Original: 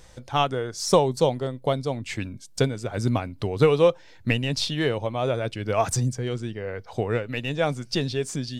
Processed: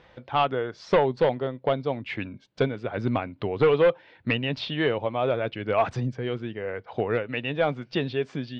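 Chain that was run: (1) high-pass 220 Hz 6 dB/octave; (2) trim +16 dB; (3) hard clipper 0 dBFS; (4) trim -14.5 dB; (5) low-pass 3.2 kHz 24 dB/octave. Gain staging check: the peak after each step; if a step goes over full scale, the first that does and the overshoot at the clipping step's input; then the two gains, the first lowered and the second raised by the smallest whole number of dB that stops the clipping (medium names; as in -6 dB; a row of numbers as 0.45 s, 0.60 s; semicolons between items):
-6.0 dBFS, +10.0 dBFS, 0.0 dBFS, -14.5 dBFS, -13.0 dBFS; step 2, 10.0 dB; step 2 +6 dB, step 4 -4.5 dB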